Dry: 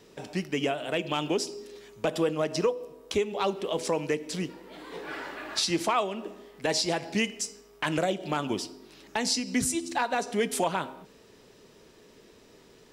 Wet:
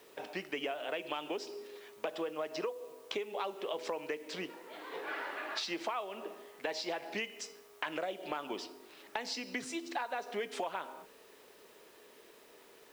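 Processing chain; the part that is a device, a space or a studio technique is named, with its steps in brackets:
baby monitor (band-pass filter 450–3,400 Hz; downward compressor, threshold −34 dBFS, peak gain reduction 12 dB; white noise bed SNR 25 dB)

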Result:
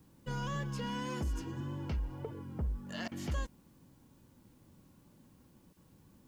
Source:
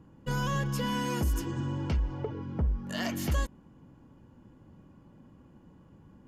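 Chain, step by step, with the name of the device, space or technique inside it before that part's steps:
worn cassette (low-pass filter 7,700 Hz 12 dB per octave; tape wow and flutter; tape dropouts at 0:03.08/0:05.73, 34 ms −17 dB; white noise bed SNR 34 dB)
level −7 dB

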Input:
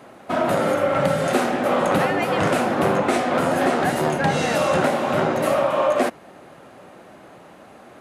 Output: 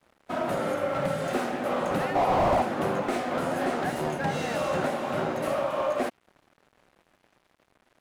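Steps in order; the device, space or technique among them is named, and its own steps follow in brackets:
0:02.15–0:02.62: flat-topped bell 820 Hz +15 dB 1.2 octaves
early transistor amplifier (dead-zone distortion −41.5 dBFS; slew-rate limiting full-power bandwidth 160 Hz)
level −7.5 dB

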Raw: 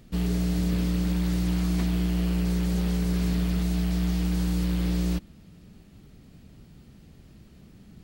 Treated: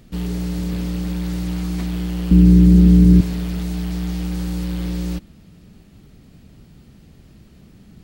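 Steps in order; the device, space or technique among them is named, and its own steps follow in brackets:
parallel distortion (in parallel at −4 dB: hard clipping −33.5 dBFS, distortion −6 dB)
0:02.31–0:03.21: on the sum: low shelf with overshoot 440 Hz +13 dB, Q 1.5

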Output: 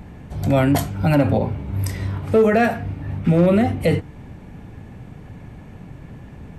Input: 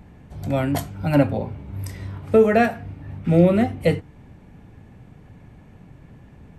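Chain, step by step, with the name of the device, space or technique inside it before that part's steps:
clipper into limiter (hard clipping −8 dBFS, distortion −24 dB; brickwall limiter −16 dBFS, peak gain reduction 8 dB)
level +7.5 dB

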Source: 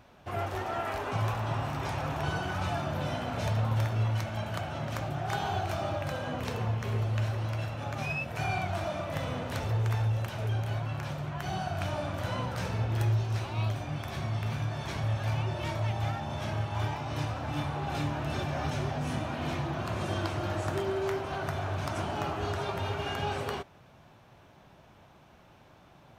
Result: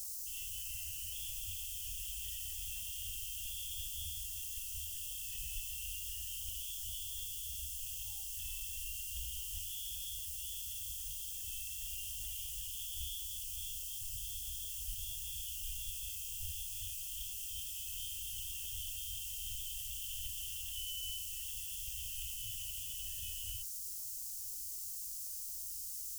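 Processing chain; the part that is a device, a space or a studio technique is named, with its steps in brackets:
scrambled radio voice (band-pass filter 310–2,900 Hz; voice inversion scrambler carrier 3,400 Hz; white noise bed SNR 22 dB)
inverse Chebyshev band-stop filter 190–2,400 Hz, stop band 50 dB
level +17 dB

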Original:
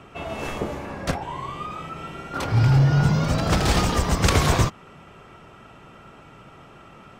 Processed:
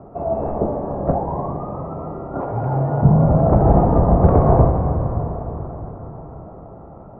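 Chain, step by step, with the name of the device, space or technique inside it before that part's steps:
0:02.41–0:03.03: RIAA equalisation recording
under water (low-pass filter 880 Hz 24 dB per octave; parametric band 670 Hz +5 dB 0.48 octaves)
dense smooth reverb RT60 4.8 s, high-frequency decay 0.85×, DRR 3.5 dB
level +6 dB

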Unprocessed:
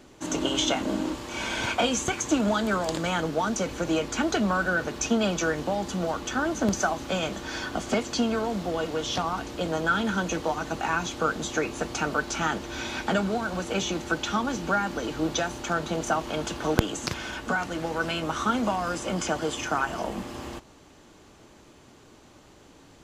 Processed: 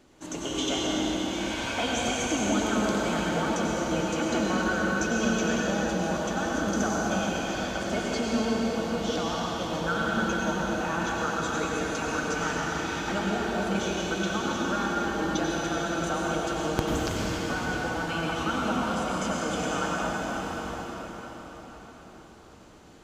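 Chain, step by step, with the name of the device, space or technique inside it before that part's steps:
cathedral (convolution reverb RT60 5.5 s, pre-delay 85 ms, DRR −5 dB)
level −7 dB

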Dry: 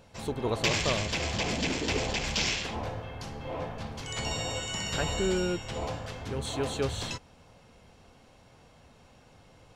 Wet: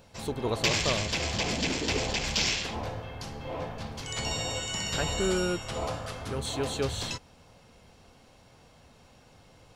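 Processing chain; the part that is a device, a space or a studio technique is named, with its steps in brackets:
presence and air boost (parametric band 4,600 Hz +2.5 dB; high-shelf EQ 11,000 Hz +7 dB)
0:05.20–0:06.40: thirty-one-band graphic EQ 630 Hz +4 dB, 1,250 Hz +8 dB, 10,000 Hz +9 dB

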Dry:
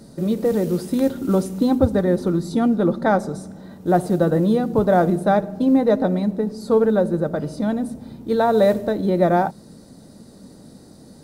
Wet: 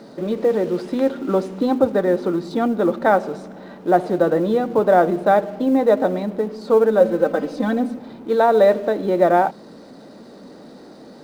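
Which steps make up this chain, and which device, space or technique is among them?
phone line with mismatched companding (band-pass filter 330–3,300 Hz; mu-law and A-law mismatch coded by mu)
0:07.00–0:07.99: comb filter 3.9 ms, depth 92%
level +3 dB

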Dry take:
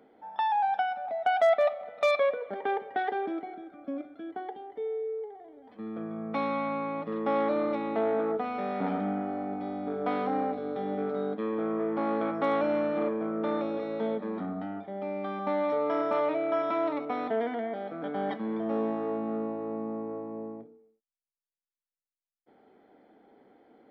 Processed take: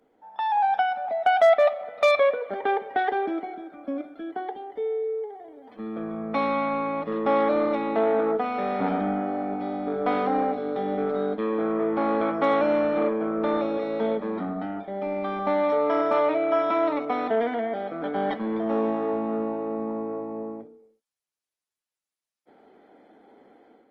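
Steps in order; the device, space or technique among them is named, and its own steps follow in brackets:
video call (high-pass filter 180 Hz 6 dB per octave; automatic gain control gain up to 10.5 dB; level −4.5 dB; Opus 20 kbit/s 48,000 Hz)

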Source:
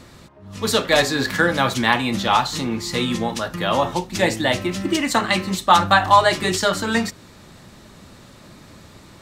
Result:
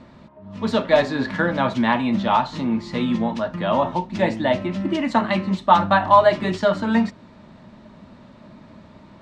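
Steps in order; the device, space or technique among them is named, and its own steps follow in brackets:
inside a cardboard box (low-pass filter 3,300 Hz 12 dB per octave; hollow resonant body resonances 220/620/920 Hz, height 10 dB, ringing for 30 ms)
level −5.5 dB

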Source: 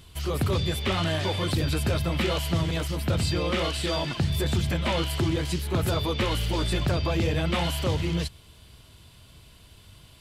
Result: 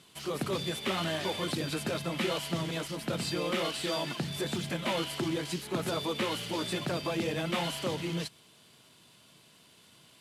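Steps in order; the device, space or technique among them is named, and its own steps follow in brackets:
early wireless headset (high-pass filter 160 Hz 24 dB per octave; variable-slope delta modulation 64 kbit/s)
level −4 dB

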